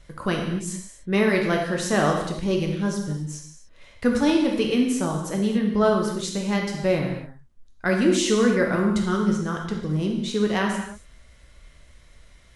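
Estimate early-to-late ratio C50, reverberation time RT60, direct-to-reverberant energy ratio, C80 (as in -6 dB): 4.0 dB, no single decay rate, 0.5 dB, 6.0 dB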